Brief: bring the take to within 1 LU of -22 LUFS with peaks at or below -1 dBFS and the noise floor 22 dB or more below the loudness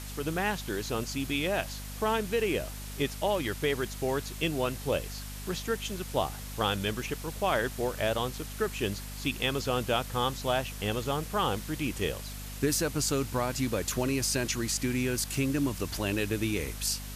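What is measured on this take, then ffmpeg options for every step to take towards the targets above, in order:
hum 50 Hz; harmonics up to 250 Hz; hum level -39 dBFS; noise floor -40 dBFS; noise floor target -53 dBFS; loudness -31.0 LUFS; peak -14.0 dBFS; loudness target -22.0 LUFS
-> -af "bandreject=f=50:t=h:w=6,bandreject=f=100:t=h:w=6,bandreject=f=150:t=h:w=6,bandreject=f=200:t=h:w=6,bandreject=f=250:t=h:w=6"
-af "afftdn=nr=13:nf=-40"
-af "volume=9dB"

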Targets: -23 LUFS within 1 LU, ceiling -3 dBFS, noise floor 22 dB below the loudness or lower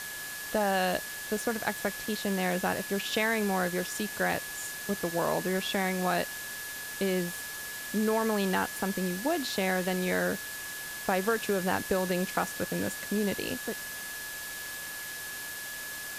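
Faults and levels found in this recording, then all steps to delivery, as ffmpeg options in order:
steady tone 1700 Hz; tone level -40 dBFS; noise floor -39 dBFS; noise floor target -53 dBFS; loudness -31.0 LUFS; peak -13.5 dBFS; loudness target -23.0 LUFS
-> -af "bandreject=f=1.7k:w=30"
-af "afftdn=nr=14:nf=-39"
-af "volume=8dB"

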